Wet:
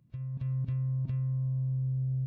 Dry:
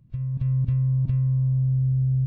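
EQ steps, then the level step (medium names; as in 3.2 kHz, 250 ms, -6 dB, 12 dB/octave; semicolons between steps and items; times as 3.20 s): high-pass 210 Hz 6 dB/octave; -3.5 dB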